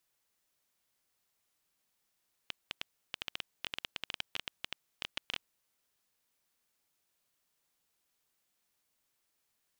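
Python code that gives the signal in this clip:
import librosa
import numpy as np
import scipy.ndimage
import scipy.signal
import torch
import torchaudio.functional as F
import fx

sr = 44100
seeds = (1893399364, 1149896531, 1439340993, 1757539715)

y = fx.geiger_clicks(sr, seeds[0], length_s=2.97, per_s=11.0, level_db=-18.0)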